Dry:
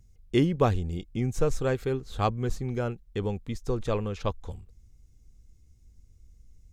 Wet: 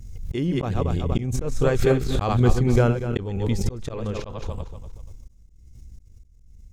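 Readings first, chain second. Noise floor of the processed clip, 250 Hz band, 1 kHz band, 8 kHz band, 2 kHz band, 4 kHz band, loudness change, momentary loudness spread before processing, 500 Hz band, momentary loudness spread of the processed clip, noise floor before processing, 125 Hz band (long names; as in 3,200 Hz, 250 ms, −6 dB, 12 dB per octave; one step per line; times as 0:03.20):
−51 dBFS, +5.0 dB, +2.5 dB, +6.5 dB, +5.5 dB, +4.0 dB, +5.5 dB, 8 LU, +4.5 dB, 14 LU, −58 dBFS, +7.5 dB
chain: feedback delay that plays each chunk backwards 120 ms, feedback 45%, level −7 dB
volume swells 540 ms
low-shelf EQ 170 Hz +3.5 dB
transient designer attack +3 dB, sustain −5 dB
background raised ahead of every attack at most 39 dB per second
level +8.5 dB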